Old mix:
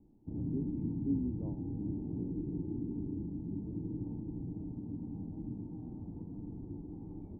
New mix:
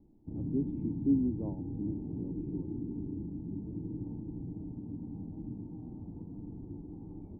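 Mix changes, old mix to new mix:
speech +6.5 dB; master: add peaking EQ 1.8 kHz -6.5 dB 0.3 oct

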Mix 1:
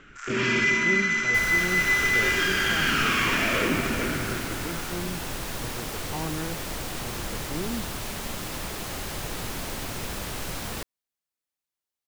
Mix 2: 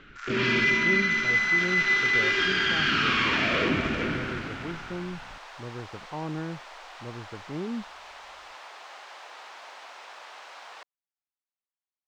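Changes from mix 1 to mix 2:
first sound: add peaking EQ 4.1 kHz +8.5 dB 0.71 oct; second sound: add ladder high-pass 620 Hz, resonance 30%; master: add distance through air 150 m

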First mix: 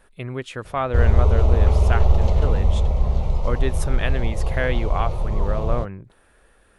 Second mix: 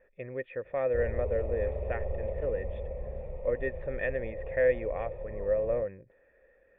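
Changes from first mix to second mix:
speech +5.0 dB; master: add cascade formant filter e

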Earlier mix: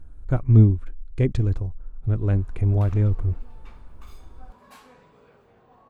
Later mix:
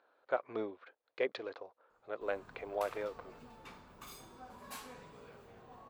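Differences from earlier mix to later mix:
speech: add Chebyshev band-pass 510–4400 Hz, order 3; background: add treble shelf 4.8 kHz +9.5 dB

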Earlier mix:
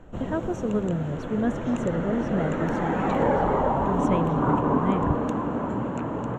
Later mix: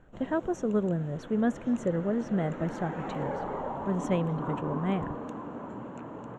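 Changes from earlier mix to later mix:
background -11.0 dB; master: add bass shelf 82 Hz -11.5 dB

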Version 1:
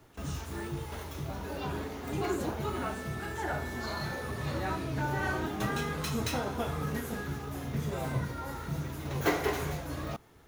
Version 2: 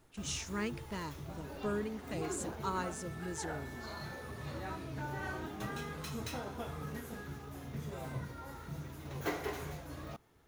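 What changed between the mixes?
speech +10.0 dB; background -8.5 dB

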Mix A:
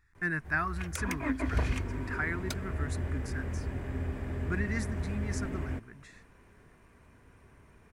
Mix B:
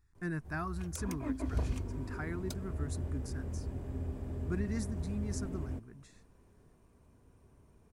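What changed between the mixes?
background -3.5 dB; master: add peaking EQ 1.9 kHz -14 dB 1.4 oct

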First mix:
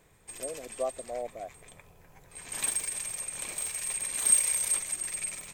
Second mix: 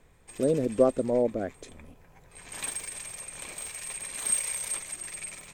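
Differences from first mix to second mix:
speech: remove vowel filter a; master: add treble shelf 6.8 kHz -7.5 dB

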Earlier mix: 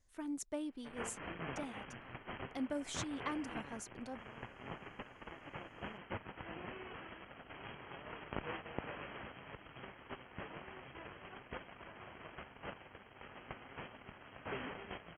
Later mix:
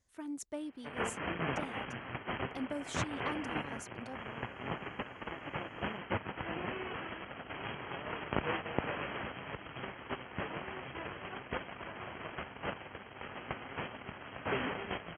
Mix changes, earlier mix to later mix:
background +8.5 dB; master: add high-pass 56 Hz

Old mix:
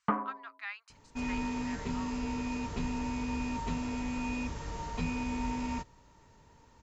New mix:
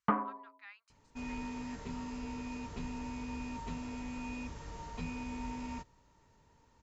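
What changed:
speech -12.0 dB; second sound -6.5 dB

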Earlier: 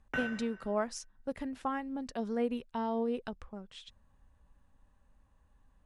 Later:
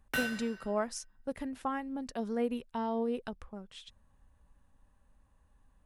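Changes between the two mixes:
background: remove boxcar filter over 10 samples; master: remove low-pass 8.2 kHz 12 dB/octave

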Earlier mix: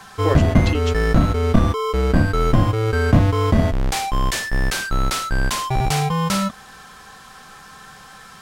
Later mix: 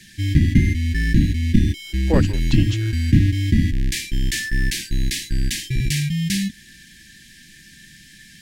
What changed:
speech: entry +1.85 s; background: add brick-wall FIR band-stop 370–1600 Hz

